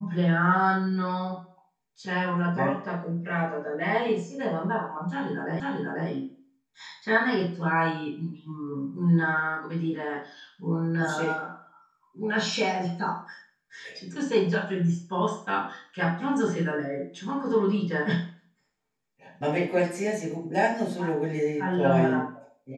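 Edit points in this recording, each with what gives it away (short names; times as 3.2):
5.6 repeat of the last 0.49 s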